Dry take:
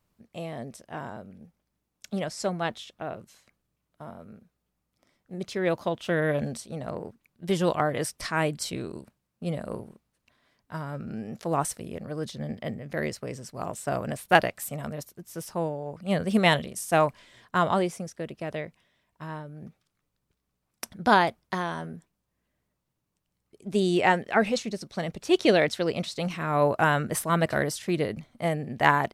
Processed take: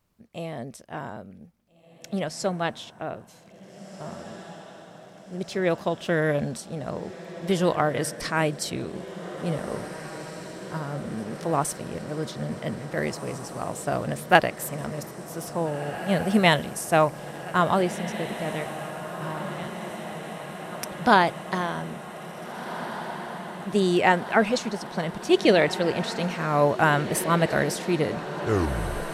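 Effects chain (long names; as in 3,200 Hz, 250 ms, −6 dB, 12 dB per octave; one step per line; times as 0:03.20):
turntable brake at the end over 0.96 s
feedback delay with all-pass diffusion 1,803 ms, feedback 74%, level −12 dB
level +2 dB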